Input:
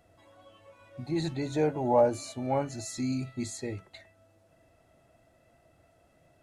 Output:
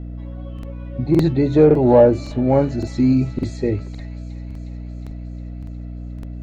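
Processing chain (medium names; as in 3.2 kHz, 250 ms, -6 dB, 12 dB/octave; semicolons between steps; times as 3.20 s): hum 60 Hz, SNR 13 dB; resonant low shelf 600 Hz +6 dB, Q 1.5; in parallel at -10.5 dB: overload inside the chain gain 19.5 dB; on the sum: distance through air 190 m; on a send: feedback echo behind a high-pass 360 ms, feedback 73%, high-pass 2 kHz, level -14 dB; on the sum: crackling interface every 0.56 s, samples 2048, repeat, from 0.54 s; trim +7 dB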